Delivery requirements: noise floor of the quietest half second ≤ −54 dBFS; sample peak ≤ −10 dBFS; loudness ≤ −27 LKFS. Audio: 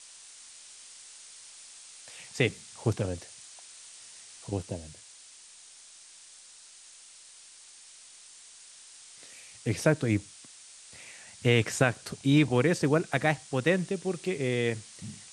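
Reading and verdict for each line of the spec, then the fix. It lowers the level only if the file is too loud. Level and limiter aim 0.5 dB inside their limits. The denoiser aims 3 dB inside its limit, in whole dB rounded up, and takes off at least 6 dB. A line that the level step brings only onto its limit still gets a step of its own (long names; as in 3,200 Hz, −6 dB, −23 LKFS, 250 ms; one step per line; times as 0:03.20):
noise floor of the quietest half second −52 dBFS: out of spec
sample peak −8.5 dBFS: out of spec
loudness −28.5 LKFS: in spec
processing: broadband denoise 6 dB, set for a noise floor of −52 dBFS
brickwall limiter −10.5 dBFS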